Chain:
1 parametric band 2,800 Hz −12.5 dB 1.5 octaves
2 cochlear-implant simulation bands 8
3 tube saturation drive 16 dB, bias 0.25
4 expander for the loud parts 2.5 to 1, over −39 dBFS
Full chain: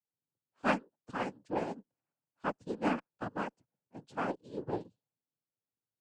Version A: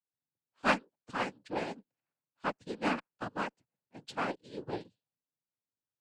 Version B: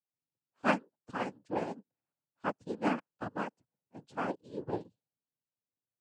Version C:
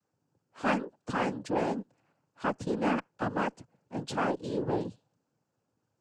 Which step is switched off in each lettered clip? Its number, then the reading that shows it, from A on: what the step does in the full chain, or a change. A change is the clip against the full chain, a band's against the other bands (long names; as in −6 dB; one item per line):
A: 1, 4 kHz band +7.5 dB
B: 3, change in crest factor +4.0 dB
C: 4, change in crest factor −5.0 dB